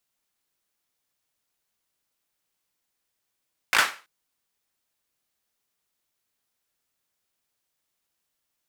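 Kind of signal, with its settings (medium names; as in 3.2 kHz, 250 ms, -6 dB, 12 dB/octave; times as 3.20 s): hand clap length 0.33 s, apart 18 ms, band 1.5 kHz, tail 0.33 s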